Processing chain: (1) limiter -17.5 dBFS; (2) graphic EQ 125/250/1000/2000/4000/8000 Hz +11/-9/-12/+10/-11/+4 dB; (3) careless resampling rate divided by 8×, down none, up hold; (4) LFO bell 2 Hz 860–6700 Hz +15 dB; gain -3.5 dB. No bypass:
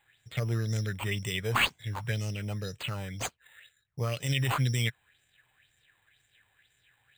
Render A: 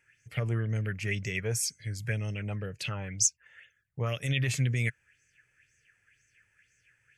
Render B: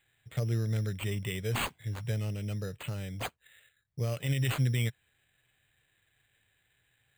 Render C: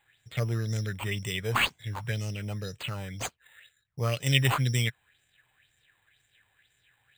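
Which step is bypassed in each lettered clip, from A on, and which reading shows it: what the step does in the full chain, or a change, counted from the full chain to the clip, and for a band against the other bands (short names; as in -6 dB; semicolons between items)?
3, 8 kHz band +11.5 dB; 4, 125 Hz band +5.5 dB; 1, crest factor change +4.5 dB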